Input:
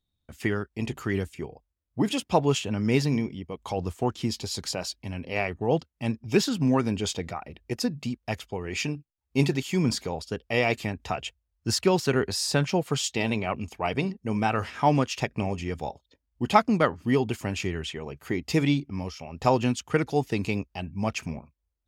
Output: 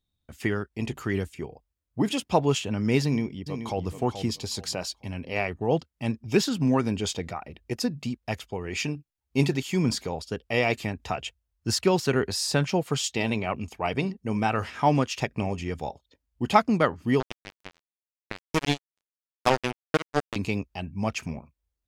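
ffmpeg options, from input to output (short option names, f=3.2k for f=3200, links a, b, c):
-filter_complex "[0:a]asplit=2[a][b];[b]afade=t=in:st=3.03:d=0.01,afade=t=out:st=3.87:d=0.01,aecho=0:1:430|860|1290:0.354813|0.0887033|0.0221758[c];[a][c]amix=inputs=2:normalize=0,asettb=1/sr,asplit=3[d][e][f];[d]atrim=end=17.204[g];[e]atrim=start=17.2:end=20.36,asetpts=PTS-STARTPTS,afade=t=in:d=0.004:c=qsin,afade=t=out:st=3.156:d=0.004:c=qsin,acrusher=bits=2:mix=0:aa=0.5[h];[f]atrim=start=20.356[i];[g][h]acrossfade=d=0.004:c1=hsin:c2=qsin[j];[j][i]acrossfade=d=0.004:c1=qsin:c2=hsin"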